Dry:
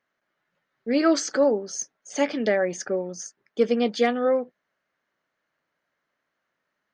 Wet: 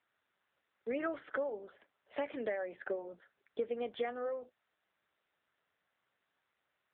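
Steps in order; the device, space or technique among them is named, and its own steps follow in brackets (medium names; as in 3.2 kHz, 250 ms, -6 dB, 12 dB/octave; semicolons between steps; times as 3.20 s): voicemail (band-pass 420–2700 Hz; compression 8:1, threshold -30 dBFS, peak gain reduction 12.5 dB; trim -2.5 dB; AMR-NB 7.95 kbps 8 kHz)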